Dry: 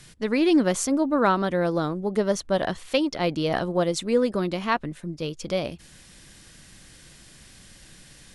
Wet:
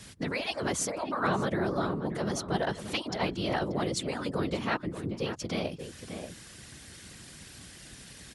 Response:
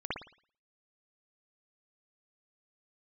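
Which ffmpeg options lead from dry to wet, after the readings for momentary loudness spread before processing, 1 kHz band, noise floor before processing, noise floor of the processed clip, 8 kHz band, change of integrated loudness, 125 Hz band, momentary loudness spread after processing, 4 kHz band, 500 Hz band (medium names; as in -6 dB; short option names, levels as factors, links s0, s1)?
8 LU, -5.5 dB, -51 dBFS, -50 dBFS, -3.0 dB, -7.5 dB, -3.0 dB, 17 LU, -3.0 dB, -8.5 dB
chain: -filter_complex "[0:a]afftfilt=real='re*lt(hypot(re,im),0.562)':imag='im*lt(hypot(re,im),0.562)':win_size=1024:overlap=0.75,afftfilt=real='hypot(re,im)*cos(2*PI*random(0))':imag='hypot(re,im)*sin(2*PI*random(1))':win_size=512:overlap=0.75,highpass=52,asplit=2[s0][s1];[s1]adelay=583.1,volume=0.282,highshelf=f=4000:g=-13.1[s2];[s0][s2]amix=inputs=2:normalize=0,asplit=2[s3][s4];[s4]acompressor=threshold=0.00708:ratio=6,volume=1.33[s5];[s3][s5]amix=inputs=2:normalize=0"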